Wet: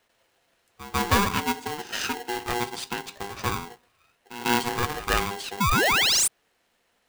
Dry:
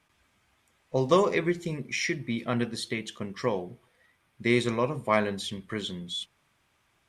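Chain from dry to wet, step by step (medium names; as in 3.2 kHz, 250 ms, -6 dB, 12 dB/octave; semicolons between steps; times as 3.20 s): reverse echo 146 ms -15.5 dB; painted sound rise, 5.60–6.28 s, 360–9600 Hz -21 dBFS; polarity switched at an audio rate 600 Hz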